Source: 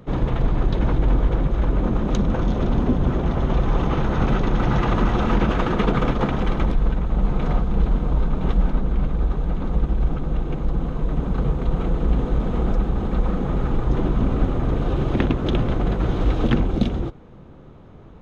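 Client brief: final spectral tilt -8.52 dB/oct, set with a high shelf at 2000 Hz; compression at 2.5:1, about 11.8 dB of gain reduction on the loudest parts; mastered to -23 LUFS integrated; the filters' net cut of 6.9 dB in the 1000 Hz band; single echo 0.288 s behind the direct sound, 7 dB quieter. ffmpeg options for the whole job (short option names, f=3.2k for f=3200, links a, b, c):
-af "equalizer=f=1k:t=o:g=-7.5,highshelf=f=2k:g=-7,acompressor=threshold=-32dB:ratio=2.5,aecho=1:1:288:0.447,volume=10dB"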